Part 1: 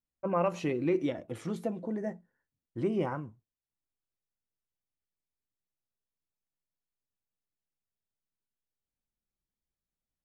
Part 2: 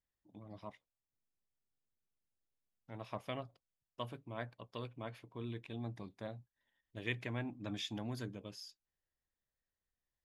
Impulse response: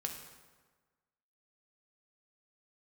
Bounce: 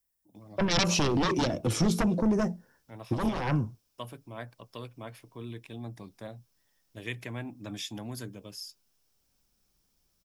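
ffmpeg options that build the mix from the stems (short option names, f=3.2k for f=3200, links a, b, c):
-filter_complex "[0:a]equalizer=f=1.9k:t=o:w=0.24:g=-9.5,aeval=exprs='0.141*sin(PI/2*4.47*val(0)/0.141)':c=same,adelay=350,volume=0.5dB[a];[1:a]aexciter=amount=1.8:drive=9.9:freq=7.5k,volume=2.5dB,asplit=2[b][c];[c]apad=whole_len=467085[d];[a][d]sidechaincompress=threshold=-47dB:ratio=5:attack=44:release=158[e];[e][b]amix=inputs=2:normalize=0,equalizer=f=5.4k:w=4.1:g=9.5,acrossover=split=190|3000[f][g][h];[g]acompressor=threshold=-34dB:ratio=2[i];[f][i][h]amix=inputs=3:normalize=0"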